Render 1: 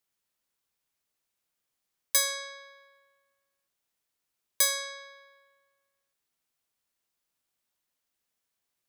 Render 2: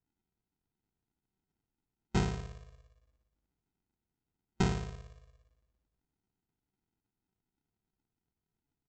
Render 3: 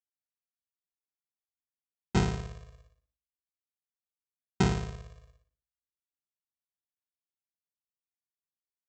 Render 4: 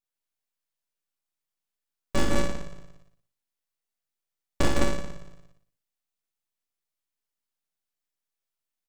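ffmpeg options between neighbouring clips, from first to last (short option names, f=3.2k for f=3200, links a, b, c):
-af "afftfilt=real='re*(1-between(b*sr/4096,220,1200))':imag='im*(1-between(b*sr/4096,220,1200))':win_size=4096:overlap=0.75,aresample=16000,acrusher=samples=28:mix=1:aa=0.000001,aresample=44100"
-af "highpass=f=48:w=0.5412,highpass=f=48:w=1.3066,agate=range=-33dB:threshold=-59dB:ratio=3:detection=peak,volume=4dB"
-af "aeval=exprs='abs(val(0))':c=same,aecho=1:1:37.9|157.4|209.9:0.794|0.708|0.631,volume=2.5dB"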